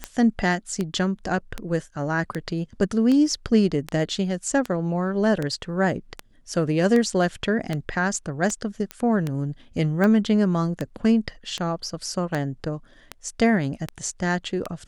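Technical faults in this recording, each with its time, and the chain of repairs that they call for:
tick 78 rpm -13 dBFS
8.91 pop -15 dBFS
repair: de-click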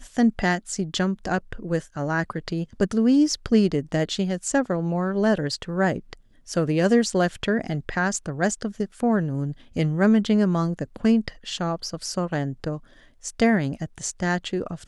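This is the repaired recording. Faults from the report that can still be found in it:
8.91 pop

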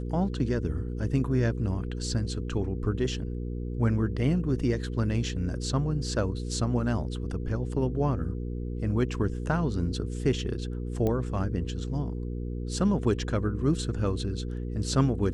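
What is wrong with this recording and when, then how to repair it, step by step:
hum 60 Hz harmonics 8 -33 dBFS
11.07 pop -17 dBFS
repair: de-click; de-hum 60 Hz, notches 8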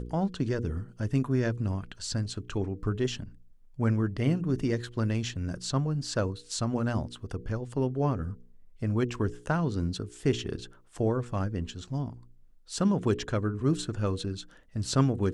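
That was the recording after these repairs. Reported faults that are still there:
11.07 pop

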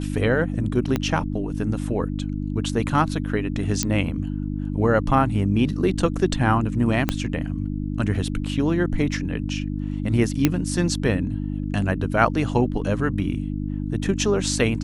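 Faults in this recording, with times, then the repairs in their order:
hum 50 Hz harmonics 6 -27 dBFS
0.96 pop -9 dBFS
3.83 pop -5 dBFS
7.09 pop -6 dBFS
10.45 pop -3 dBFS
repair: de-click; de-hum 50 Hz, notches 6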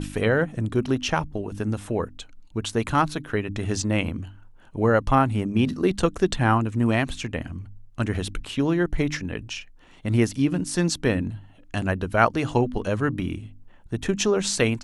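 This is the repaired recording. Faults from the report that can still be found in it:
0.96 pop
7.09 pop

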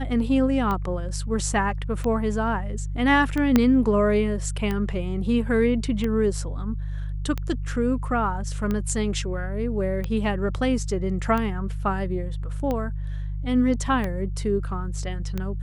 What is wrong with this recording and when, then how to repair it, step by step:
hum 50 Hz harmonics 3 -29 dBFS
tick 45 rpm -15 dBFS
3.56 pop -5 dBFS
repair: de-click; de-hum 50 Hz, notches 3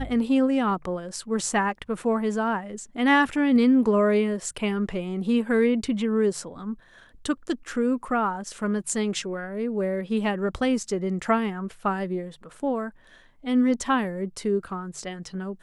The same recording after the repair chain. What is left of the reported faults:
3.56 pop

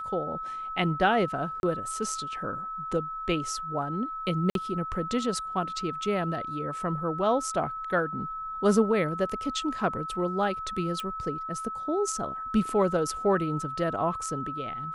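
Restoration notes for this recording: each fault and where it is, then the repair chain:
tone 1300 Hz -33 dBFS
1.6–1.63 gap 31 ms
4.5–4.55 gap 52 ms
11 pop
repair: de-click; notch 1300 Hz, Q 30; interpolate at 1.6, 31 ms; interpolate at 4.5, 52 ms

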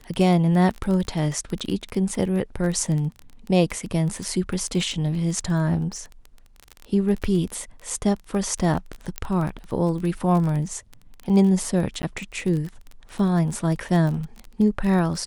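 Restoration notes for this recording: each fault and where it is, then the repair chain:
crackle 22/s -27 dBFS
9.18 pop -10 dBFS
12.02–12.03 gap 10 ms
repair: de-click; interpolate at 12.02, 10 ms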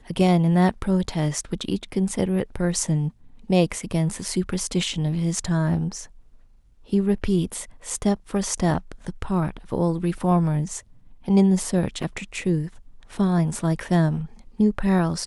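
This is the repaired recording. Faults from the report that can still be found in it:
none

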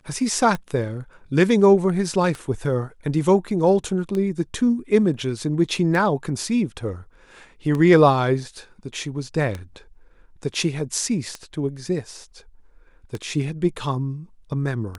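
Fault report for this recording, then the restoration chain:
tick 33 1/3 rpm -15 dBFS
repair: de-click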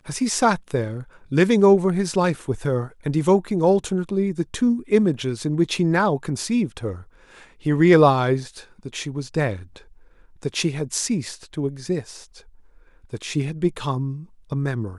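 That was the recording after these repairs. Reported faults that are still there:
none

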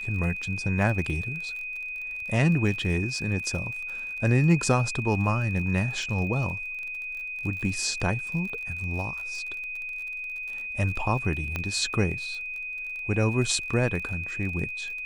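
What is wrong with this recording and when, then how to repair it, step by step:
crackle 34/s -34 dBFS
tone 2500 Hz -32 dBFS
11.56 pop -15 dBFS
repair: de-click; notch 2500 Hz, Q 30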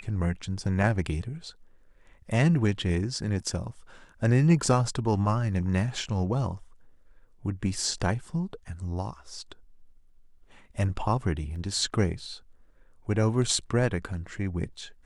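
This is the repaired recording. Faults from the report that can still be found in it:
11.56 pop

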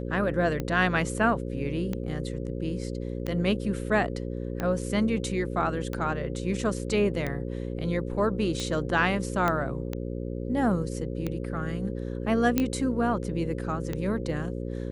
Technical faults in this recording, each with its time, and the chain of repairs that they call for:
buzz 60 Hz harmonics 9 -33 dBFS
tick 45 rpm -17 dBFS
9.48 pop -13 dBFS
12.58 pop -9 dBFS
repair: de-click; de-hum 60 Hz, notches 9

